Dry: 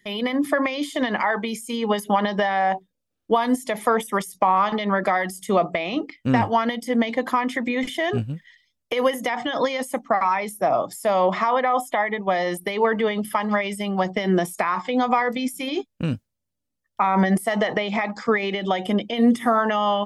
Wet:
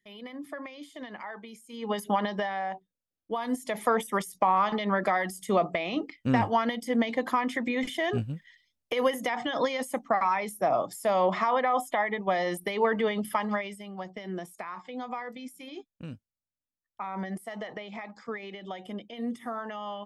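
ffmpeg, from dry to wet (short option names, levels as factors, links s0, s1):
-af "volume=1.33,afade=t=in:st=1.7:d=0.35:silence=0.237137,afade=t=out:st=2.05:d=0.67:silence=0.421697,afade=t=in:st=3.33:d=0.48:silence=0.398107,afade=t=out:st=13.38:d=0.44:silence=0.281838"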